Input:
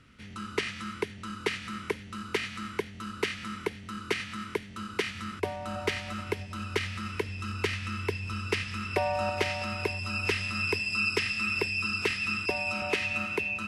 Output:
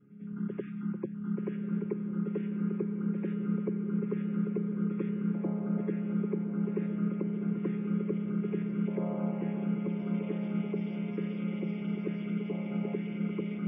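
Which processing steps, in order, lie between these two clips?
channel vocoder with a chord as carrier major triad, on C#3
spectral peaks only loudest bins 64
spectral tilt +4 dB per octave
backwards echo 96 ms −10 dB
brickwall limiter −25 dBFS, peak gain reduction 9.5 dB
low-pass filter 1,200 Hz 12 dB per octave
low shelf with overshoot 470 Hz +13.5 dB, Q 1.5
feedback delay with all-pass diffusion 1,136 ms, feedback 65%, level −6 dB
level −7 dB

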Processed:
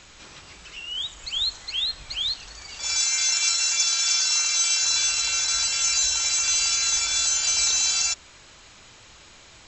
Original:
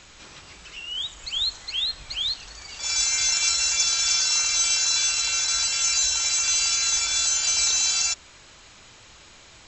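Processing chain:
0:02.98–0:04.83: low-shelf EQ 350 Hz −11.5 dB

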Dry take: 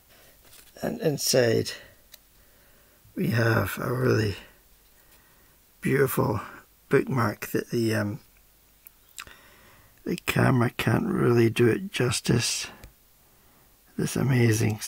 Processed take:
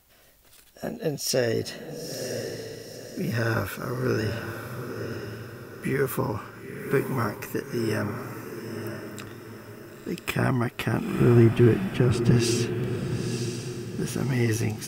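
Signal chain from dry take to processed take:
0:11.20–0:12.31: spectral tilt −3 dB per octave
on a send: feedback delay with all-pass diffusion 950 ms, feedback 43%, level −6.5 dB
on the sum: level −3 dB

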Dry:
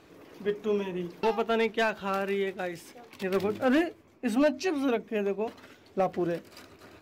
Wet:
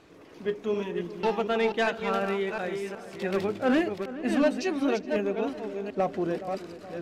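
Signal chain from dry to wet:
delay that plays each chunk backwards 369 ms, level −6 dB
low-pass filter 10,000 Hz 12 dB per octave
feedback echo with a low-pass in the loop 420 ms, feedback 58%, low-pass 1,800 Hz, level −14.5 dB

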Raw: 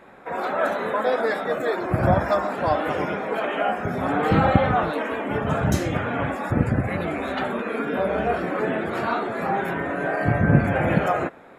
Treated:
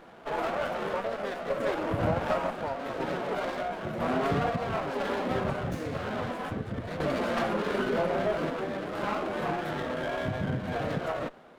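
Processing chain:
parametric band 61 Hz −7.5 dB 1.6 octaves
downward compressor 6 to 1, threshold −22 dBFS, peak gain reduction 10.5 dB
phase-vocoder pitch shift with formants kept −2 semitones
sample-and-hold tremolo 2 Hz
windowed peak hold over 9 samples

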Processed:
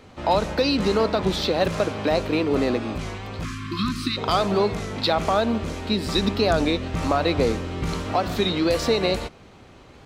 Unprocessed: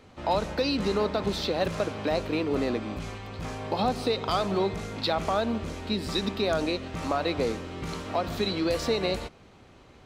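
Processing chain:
0:03.44–0:04.17: time-frequency box erased 370–1,000 Hz
0:06.15–0:08.16: low-shelf EQ 120 Hz +7.5 dB
wow of a warped record 33 1/3 rpm, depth 100 cents
level +5.5 dB

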